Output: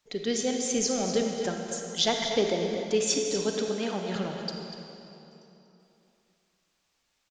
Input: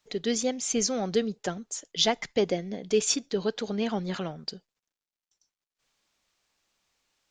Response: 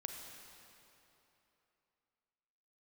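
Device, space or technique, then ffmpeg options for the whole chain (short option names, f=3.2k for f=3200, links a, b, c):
cave: -filter_complex "[0:a]aecho=1:1:242:0.299[a];[1:a]atrim=start_sample=2205[b];[a][b]afir=irnorm=-1:irlink=0,asettb=1/sr,asplit=3[c][d][e];[c]atrim=end=3.684[f];[d]atrim=start=3.68:end=4.16,asetpts=PTS-STARTPTS,afade=t=in:d=0.004:c=qsin,afade=t=out:st=0.476:d=0.004:c=qsin,highpass=200[g];[e]atrim=start=4.156[h];[f][g]acrossfade=d=0.004:c1=hsin:c2=qsin[i];[i][h]acrossfade=d=0.004:c1=qsin:c2=hsin,volume=2dB"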